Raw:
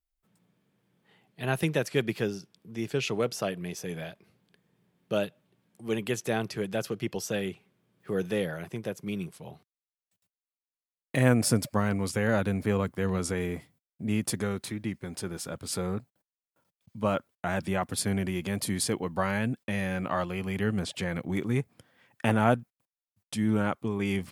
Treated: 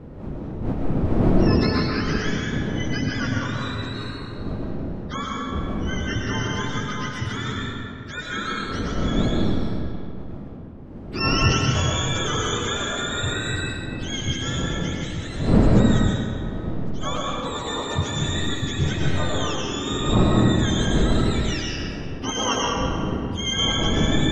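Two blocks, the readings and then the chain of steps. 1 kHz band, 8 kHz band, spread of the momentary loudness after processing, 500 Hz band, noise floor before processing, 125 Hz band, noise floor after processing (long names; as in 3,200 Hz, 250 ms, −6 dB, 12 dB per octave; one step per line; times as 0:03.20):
+7.0 dB, +5.5 dB, 12 LU, +3.0 dB, below −85 dBFS, +9.0 dB, −34 dBFS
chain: frequency axis turned over on the octave scale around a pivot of 830 Hz
wind on the microphone 240 Hz −30 dBFS
comb and all-pass reverb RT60 2.3 s, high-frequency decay 0.7×, pre-delay 75 ms, DRR −4 dB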